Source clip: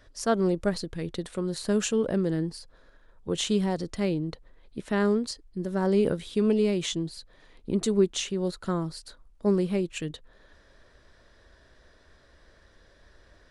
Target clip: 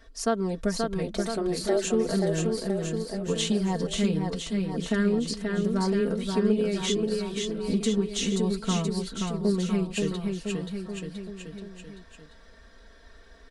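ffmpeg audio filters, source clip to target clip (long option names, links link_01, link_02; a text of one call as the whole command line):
ffmpeg -i in.wav -filter_complex "[0:a]aecho=1:1:4.4:0.81,acompressor=threshold=-23dB:ratio=3,flanger=delay=2.6:depth=3.4:regen=-62:speed=0.15:shape=triangular,asplit=3[link_01][link_02][link_03];[link_01]afade=type=out:start_time=1.07:duration=0.02[link_04];[link_02]afreqshift=180,afade=type=in:start_time=1.07:duration=0.02,afade=type=out:start_time=1.83:duration=0.02[link_05];[link_03]afade=type=in:start_time=1.83:duration=0.02[link_06];[link_04][link_05][link_06]amix=inputs=3:normalize=0,asplit=2[link_07][link_08];[link_08]aecho=0:1:530|1007|1436|1823|2170:0.631|0.398|0.251|0.158|0.1[link_09];[link_07][link_09]amix=inputs=2:normalize=0,volume=4dB" out.wav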